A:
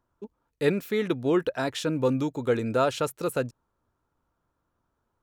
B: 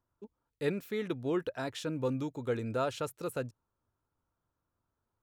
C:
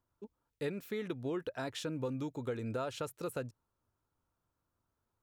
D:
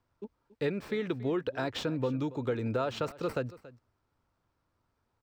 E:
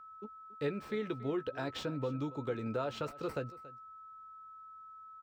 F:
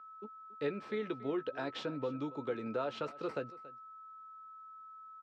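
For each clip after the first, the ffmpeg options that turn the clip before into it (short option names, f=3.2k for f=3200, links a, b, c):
-af "equalizer=f=100:w=2.4:g=5.5,volume=-8.5dB"
-af "acompressor=threshold=-34dB:ratio=4"
-filter_complex "[0:a]acrossover=split=400|1100|6200[a][b][c][d];[d]acrusher=samples=13:mix=1:aa=0.000001[e];[a][b][c][e]amix=inputs=4:normalize=0,aecho=1:1:280:0.119,volume=6dB"
-filter_complex "[0:a]aeval=exprs='val(0)+0.00562*sin(2*PI*1300*n/s)':c=same,asplit=2[a][b];[b]adelay=14,volume=-10dB[c];[a][c]amix=inputs=2:normalize=0,volume=-5.5dB"
-af "highpass=200,lowpass=4.8k"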